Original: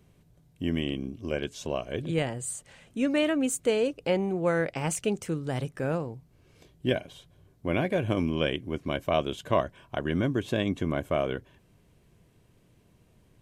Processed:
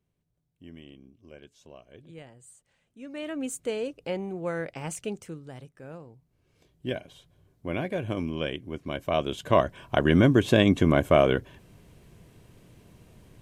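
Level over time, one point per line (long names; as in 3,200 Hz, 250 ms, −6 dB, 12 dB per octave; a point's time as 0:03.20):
0:02.98 −18 dB
0:03.40 −5.5 dB
0:05.12 −5.5 dB
0:05.73 −15.5 dB
0:07.08 −3.5 dB
0:08.85 −3.5 dB
0:09.95 +8 dB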